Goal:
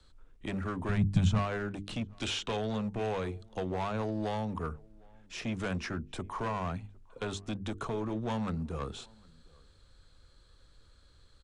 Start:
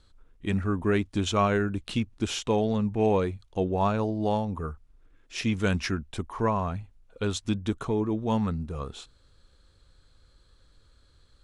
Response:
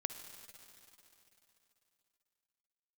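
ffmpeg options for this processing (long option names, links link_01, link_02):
-filter_complex "[0:a]acrossover=split=140|460|4300[link_01][link_02][link_03][link_04];[link_02]alimiter=level_in=3.5dB:limit=-24dB:level=0:latency=1:release=13,volume=-3.5dB[link_05];[link_01][link_05][link_03][link_04]amix=inputs=4:normalize=0,acrossover=split=130|1500[link_06][link_07][link_08];[link_06]acompressor=threshold=-40dB:ratio=4[link_09];[link_07]acompressor=threshold=-29dB:ratio=4[link_10];[link_08]acompressor=threshold=-43dB:ratio=4[link_11];[link_09][link_10][link_11]amix=inputs=3:normalize=0,asettb=1/sr,asplit=3[link_12][link_13][link_14];[link_12]atrim=end=2.084[link_15];[link_13]atrim=start=2.08:end=2.57,asetpts=PTS-STARTPTS,afade=type=in:duration=0.004:curve=qsin,afade=type=out:start_time=0.486:duration=0.004:curve=qsin,equalizer=frequency=3200:width_type=o:width=1.6:gain=9.5[link_16];[link_14]atrim=start=2.566[link_17];[link_15][link_16]acrossfade=duration=0.004:curve1=hsin:curve2=qsin[link_18];[link_18][link_17]acrossfade=duration=0.004:curve1=qsin:curve2=hsin,asoftclip=type=hard:threshold=-28.5dB,aresample=22050,aresample=44100,asettb=1/sr,asplit=3[link_19][link_20][link_21];[link_19]atrim=end=0.894[link_22];[link_20]atrim=start=0.89:end=1.39,asetpts=PTS-STARTPTS,afade=type=in:duration=0.004:curve=qsin,afade=type=out:start_time=0.496:duration=0.004:curve=qsin,lowshelf=frequency=230:width_type=q:width=3:gain=12.5[link_23];[link_21]atrim=start=1.386[link_24];[link_22][link_23]acrossfade=duration=0.004:curve1=hsin:curve2=qsin[link_25];[link_25][link_24]acrossfade=duration=0.004:curve1=qsin:curve2=hsin,bandreject=frequency=50:width_type=h:width=6,bandreject=frequency=100:width_type=h:width=6,bandreject=frequency=150:width_type=h:width=6,bandreject=frequency=200:width_type=h:width=6,bandreject=frequency=250:width_type=h:width=6,bandreject=frequency=300:width_type=h:width=6,bandreject=frequency=350:width_type=h:width=6,bandreject=frequency=400:width_type=h:width=6,bandreject=frequency=450:width_type=h:width=6,asplit=2[link_26][link_27];[link_27]adelay=758,volume=-27dB,highshelf=frequency=4000:gain=-17.1[link_28];[link_26][link_28]amix=inputs=2:normalize=0"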